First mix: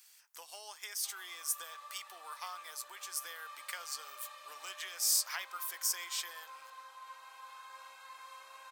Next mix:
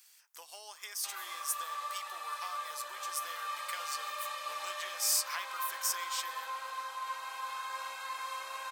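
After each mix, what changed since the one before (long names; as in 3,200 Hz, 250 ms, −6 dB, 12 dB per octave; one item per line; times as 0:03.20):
background +11.5 dB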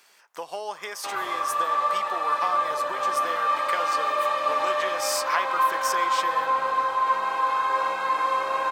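master: remove first difference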